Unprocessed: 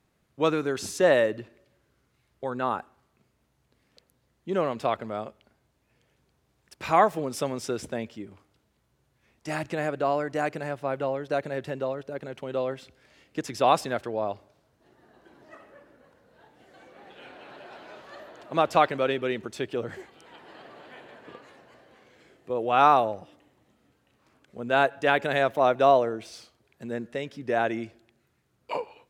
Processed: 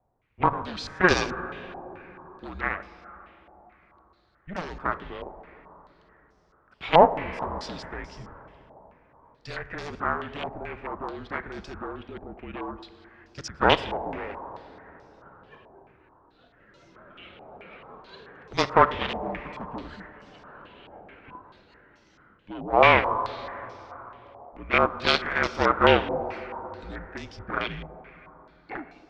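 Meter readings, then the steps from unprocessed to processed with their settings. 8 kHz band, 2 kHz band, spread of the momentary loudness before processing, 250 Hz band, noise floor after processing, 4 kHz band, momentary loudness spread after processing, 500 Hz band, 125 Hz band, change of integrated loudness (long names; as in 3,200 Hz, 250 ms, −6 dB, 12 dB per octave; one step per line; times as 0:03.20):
−4.0 dB, +4.5 dB, 22 LU, −0.5 dB, −61 dBFS, +6.0 dB, 22 LU, −1.5 dB, +2.0 dB, +1.0 dB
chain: frequency shifter −180 Hz
in parallel at −7.5 dB: soft clipping −19 dBFS, distortion −10 dB
on the sum: harmonic generator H 7 −13 dB, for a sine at −4.5 dBFS
dense smooth reverb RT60 4.3 s, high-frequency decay 0.55×, DRR 11 dB
low-pass on a step sequencer 4.6 Hz 780–5,500 Hz
level −2 dB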